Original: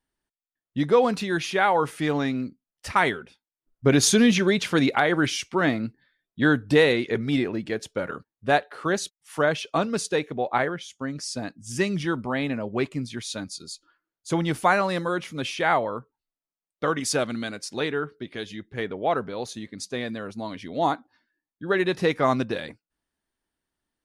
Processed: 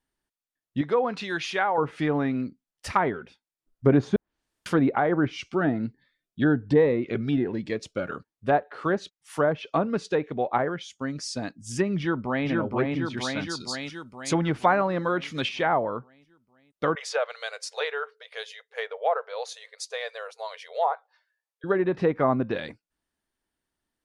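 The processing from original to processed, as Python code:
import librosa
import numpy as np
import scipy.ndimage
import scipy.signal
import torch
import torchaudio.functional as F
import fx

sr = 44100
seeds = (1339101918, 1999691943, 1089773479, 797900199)

y = fx.low_shelf(x, sr, hz=490.0, db=-9.5, at=(0.81, 1.78))
y = fx.notch_cascade(y, sr, direction='rising', hz=1.2, at=(5.32, 8.11))
y = fx.echo_throw(y, sr, start_s=11.98, length_s=0.5, ms=470, feedback_pct=60, wet_db=-1.0)
y = fx.high_shelf(y, sr, hz=2300.0, db=10.0, at=(13.17, 15.49))
y = fx.brickwall_highpass(y, sr, low_hz=430.0, at=(16.95, 21.64))
y = fx.edit(y, sr, fx.room_tone_fill(start_s=4.16, length_s=0.5), tone=tone)
y = fx.env_lowpass_down(y, sr, base_hz=1100.0, full_db=-18.5)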